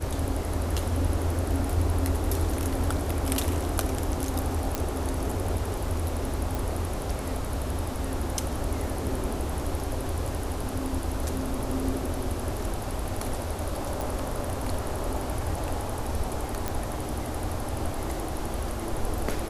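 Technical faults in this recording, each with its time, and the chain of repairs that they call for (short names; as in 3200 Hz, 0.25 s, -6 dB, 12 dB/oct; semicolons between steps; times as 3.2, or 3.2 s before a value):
4.75 pop -11 dBFS
6.55 pop
14.01 pop
16.68 pop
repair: de-click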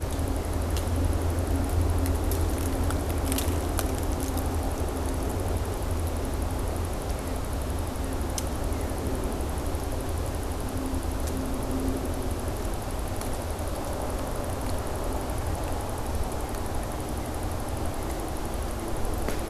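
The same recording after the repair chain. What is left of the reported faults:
none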